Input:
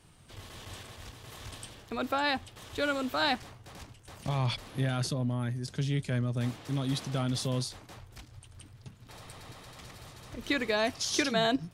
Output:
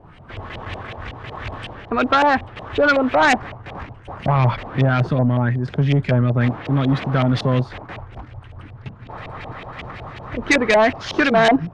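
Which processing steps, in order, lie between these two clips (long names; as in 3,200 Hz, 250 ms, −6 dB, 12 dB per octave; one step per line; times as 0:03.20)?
auto-filter low-pass saw up 5.4 Hz 620–2,800 Hz
sine wavefolder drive 7 dB, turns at −12.5 dBFS
level +3 dB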